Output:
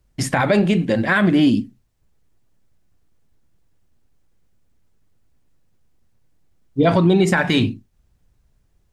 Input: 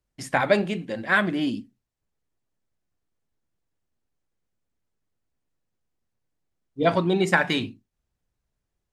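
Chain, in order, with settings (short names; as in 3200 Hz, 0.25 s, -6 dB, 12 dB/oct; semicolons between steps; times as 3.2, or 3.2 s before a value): in parallel at +1.5 dB: compressor, threshold -29 dBFS, peak gain reduction 15 dB; on the sum: low shelf 210 Hz +9 dB; maximiser +10.5 dB; gain -6 dB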